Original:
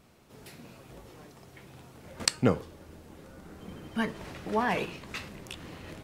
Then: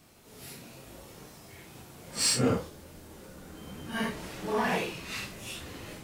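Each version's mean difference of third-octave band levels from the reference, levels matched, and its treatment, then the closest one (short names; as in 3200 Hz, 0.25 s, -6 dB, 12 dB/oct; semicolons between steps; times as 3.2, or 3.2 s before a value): 4.5 dB: phase scrambler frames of 0.2 s; high shelf 4400 Hz +9.5 dB; in parallel at -4 dB: soft clip -29.5 dBFS, distortion -6 dB; on the sum: gain -3.5 dB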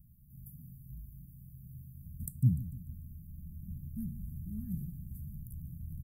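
20.0 dB: inverse Chebyshev band-stop 450–5500 Hz, stop band 60 dB; bell 100 Hz -13 dB 0.22 oct; on a send: feedback echo 0.148 s, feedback 51%, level -14.5 dB; on the sum: gain +9 dB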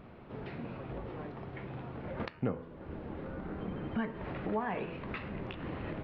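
11.0 dB: de-hum 83.2 Hz, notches 36; compressor 3:1, threshold -45 dBFS, peak gain reduction 19.5 dB; Gaussian blur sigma 3.4 samples; gain +9.5 dB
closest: first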